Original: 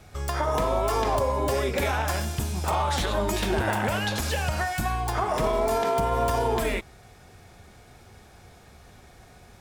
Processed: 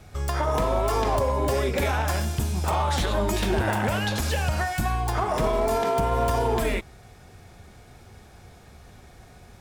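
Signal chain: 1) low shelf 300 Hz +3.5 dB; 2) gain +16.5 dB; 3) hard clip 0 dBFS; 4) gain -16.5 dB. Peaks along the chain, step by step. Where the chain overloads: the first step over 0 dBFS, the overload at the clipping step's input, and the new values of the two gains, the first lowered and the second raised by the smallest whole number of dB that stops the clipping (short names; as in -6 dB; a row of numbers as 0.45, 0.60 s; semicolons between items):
-13.0, +3.5, 0.0, -16.5 dBFS; step 2, 3.5 dB; step 2 +12.5 dB, step 4 -12.5 dB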